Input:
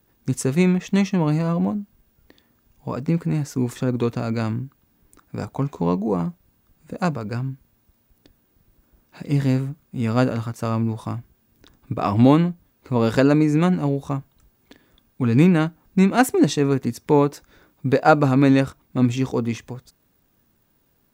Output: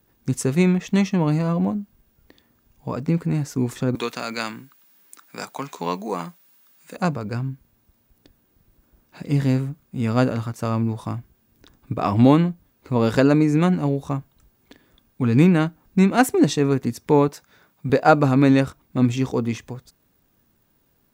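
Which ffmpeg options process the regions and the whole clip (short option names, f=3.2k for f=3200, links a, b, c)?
-filter_complex "[0:a]asettb=1/sr,asplit=3[a][b][c];[a]atrim=end=3.954[d];[b]atrim=start=3.95:end=6.97,asetpts=PTS-STARTPTS,afade=t=in:d=0.004:c=qsin,afade=t=out:st=3.016:d=0.004:c=qsin,highpass=f=160:w=0.5412,highpass=f=160:w=1.3066,tiltshelf=f=780:g=-10[e];[c]atrim=start=6.966[f];[d][e]acrossfade=d=0.004:c1=hsin:c2=qsin[g];[g][f]acrossfade=d=0.004:c1=qsin:c2=hsin,asettb=1/sr,asplit=3[h][i][j];[h]atrim=end=17.284[k];[i]atrim=start=17.28:end=17.9,asetpts=PTS-STARTPTS,afade=t=in:d=0.004:c=qsin,afade=t=out:st=0.616:d=0.004:c=qsin,highpass=120,equalizer=f=320:t=o:w=0.64:g=-9.5,bandreject=f=530:w=11[l];[j]atrim=start=17.896[m];[k][l]acrossfade=d=0.004:c1=hsin:c2=qsin[n];[n][m]acrossfade=d=0.004:c1=qsin:c2=hsin"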